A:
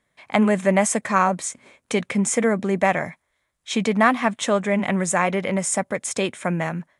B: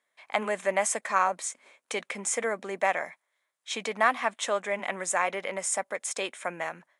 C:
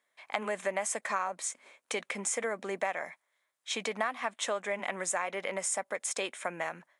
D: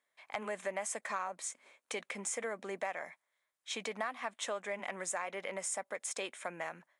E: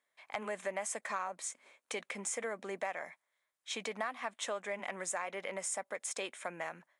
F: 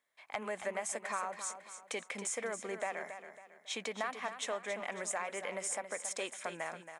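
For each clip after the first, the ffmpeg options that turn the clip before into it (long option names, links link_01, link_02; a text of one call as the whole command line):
ffmpeg -i in.wav -af "highpass=530,volume=-5dB" out.wav
ffmpeg -i in.wav -af "acompressor=threshold=-29dB:ratio=4" out.wav
ffmpeg -i in.wav -af "asoftclip=type=tanh:threshold=-16.5dB,volume=-5dB" out.wav
ffmpeg -i in.wav -af anull out.wav
ffmpeg -i in.wav -af "aecho=1:1:275|550|825|1100:0.316|0.12|0.0457|0.0174" out.wav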